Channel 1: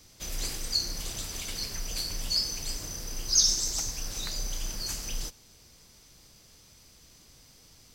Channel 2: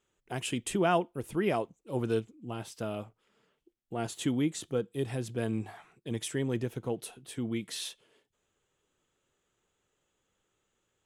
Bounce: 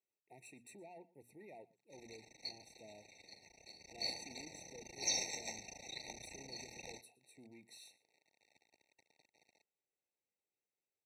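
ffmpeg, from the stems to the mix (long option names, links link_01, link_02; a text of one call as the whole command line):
ffmpeg -i stem1.wav -i stem2.wav -filter_complex "[0:a]acrusher=bits=5:dc=4:mix=0:aa=0.000001,lowpass=3600,lowshelf=frequency=100:gain=-7.5,adelay=1700,volume=-1.5dB,afade=type=in:start_time=3.78:duration=0.38:silence=0.298538[link_01];[1:a]bandreject=frequency=60:width_type=h:width=6,bandreject=frequency=120:width_type=h:width=6,bandreject=frequency=180:width_type=h:width=6,bandreject=frequency=240:width_type=h:width=6,alimiter=level_in=1dB:limit=-24dB:level=0:latency=1:release=15,volume=-1dB,asoftclip=type=tanh:threshold=-29dB,volume=-16dB,asplit=2[link_02][link_03];[link_03]volume=-21.5dB,aecho=0:1:117:1[link_04];[link_01][link_02][link_04]amix=inputs=3:normalize=0,highpass=78,lowshelf=frequency=310:gain=-10.5,afftfilt=real='re*eq(mod(floor(b*sr/1024/910),2),0)':imag='im*eq(mod(floor(b*sr/1024/910),2),0)':win_size=1024:overlap=0.75" out.wav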